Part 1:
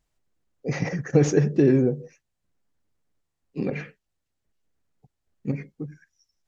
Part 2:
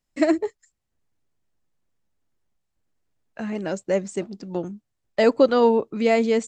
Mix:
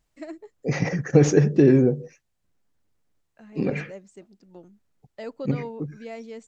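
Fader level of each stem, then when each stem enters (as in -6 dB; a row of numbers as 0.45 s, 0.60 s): +2.5 dB, -18.5 dB; 0.00 s, 0.00 s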